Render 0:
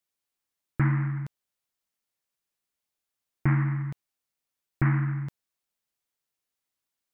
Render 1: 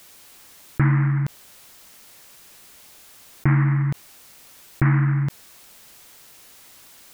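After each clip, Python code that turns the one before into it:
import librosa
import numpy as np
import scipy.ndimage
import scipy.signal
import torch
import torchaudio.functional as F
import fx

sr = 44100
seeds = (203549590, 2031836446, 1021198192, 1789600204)

y = fx.env_flatten(x, sr, amount_pct=50)
y = F.gain(torch.from_numpy(y), 4.5).numpy()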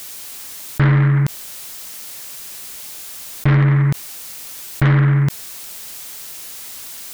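y = fx.high_shelf(x, sr, hz=3100.0, db=7.5)
y = 10.0 ** (-17.5 / 20.0) * np.tanh(y / 10.0 ** (-17.5 / 20.0))
y = F.gain(torch.from_numpy(y), 8.5).numpy()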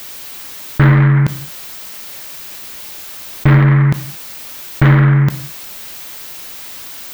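y = fx.peak_eq(x, sr, hz=9700.0, db=-8.5, octaves=1.7)
y = fx.rev_gated(y, sr, seeds[0], gate_ms=250, shape='falling', drr_db=9.5)
y = F.gain(torch.from_numpy(y), 5.5).numpy()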